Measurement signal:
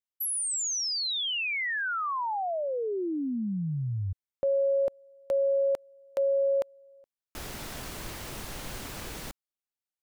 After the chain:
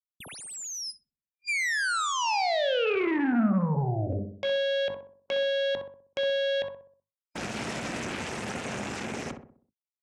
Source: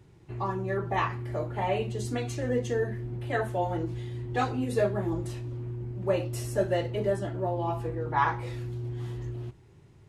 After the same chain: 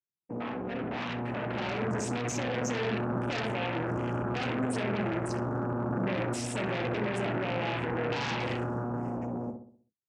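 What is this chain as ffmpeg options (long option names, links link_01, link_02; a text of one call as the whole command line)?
ffmpeg -i in.wav -filter_complex "[0:a]bandreject=frequency=50:width_type=h:width=6,bandreject=frequency=100:width_type=h:width=6,bandreject=frequency=150:width_type=h:width=6,bandreject=frequency=200:width_type=h:width=6,bandreject=frequency=250:width_type=h:width=6,bandreject=frequency=300:width_type=h:width=6,bandreject=frequency=350:width_type=h:width=6,bandreject=frequency=400:width_type=h:width=6,bandreject=frequency=450:width_type=h:width=6,agate=range=-33dB:threshold=-45dB:ratio=3:release=142:detection=peak,afftdn=noise_reduction=25:noise_floor=-42,afftfilt=real='re*(1-between(b*sr/4096,2400,5000))':imag='im*(1-between(b*sr/4096,2400,5000))':win_size=4096:overlap=0.75,highshelf=frequency=5400:gain=11,acrossover=split=180[link_01][link_02];[link_02]acompressor=threshold=-37dB:ratio=10:attack=0.57:release=28:knee=6:detection=peak[link_03];[link_01][link_03]amix=inputs=2:normalize=0,alimiter=level_in=13dB:limit=-24dB:level=0:latency=1:release=37,volume=-13dB,dynaudnorm=framelen=220:gausssize=11:maxgain=5.5dB,aeval=exprs='0.0266*(cos(1*acos(clip(val(0)/0.0266,-1,1)))-cos(1*PI/2))+0.0075*(cos(3*acos(clip(val(0)/0.0266,-1,1)))-cos(3*PI/2))+0.00188*(cos(5*acos(clip(val(0)/0.0266,-1,1)))-cos(5*PI/2))+0.00841*(cos(6*acos(clip(val(0)/0.0266,-1,1)))-cos(6*PI/2))+0.00266*(cos(7*acos(clip(val(0)/0.0266,-1,1)))-cos(7*PI/2))':channel_layout=same,highpass=120,equalizer=frequency=220:width_type=q:width=4:gain=5,equalizer=frequency=1100:width_type=q:width=4:gain=-4,equalizer=frequency=2600:width_type=q:width=4:gain=5,lowpass=frequency=8200:width=0.5412,lowpass=frequency=8200:width=1.3066,asplit=2[link_04][link_05];[link_05]adelay=63,lowpass=frequency=1200:poles=1,volume=-6dB,asplit=2[link_06][link_07];[link_07]adelay=63,lowpass=frequency=1200:poles=1,volume=0.48,asplit=2[link_08][link_09];[link_09]adelay=63,lowpass=frequency=1200:poles=1,volume=0.48,asplit=2[link_10][link_11];[link_11]adelay=63,lowpass=frequency=1200:poles=1,volume=0.48,asplit=2[link_12][link_13];[link_13]adelay=63,lowpass=frequency=1200:poles=1,volume=0.48,asplit=2[link_14][link_15];[link_15]adelay=63,lowpass=frequency=1200:poles=1,volume=0.48[link_16];[link_04][link_06][link_08][link_10][link_12][link_14][link_16]amix=inputs=7:normalize=0,volume=7dB" out.wav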